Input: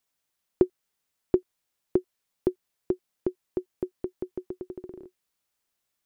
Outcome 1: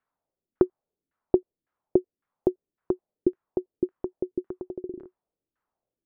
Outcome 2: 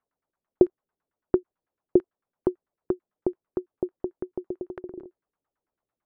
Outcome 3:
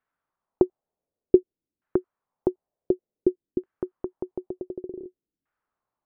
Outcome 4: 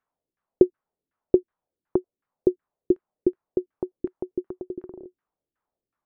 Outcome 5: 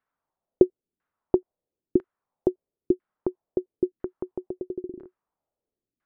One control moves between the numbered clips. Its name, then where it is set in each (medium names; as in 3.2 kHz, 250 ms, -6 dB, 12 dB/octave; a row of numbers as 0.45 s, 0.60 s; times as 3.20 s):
LFO low-pass, rate: 1.8 Hz, 9 Hz, 0.55 Hz, 2.7 Hz, 1 Hz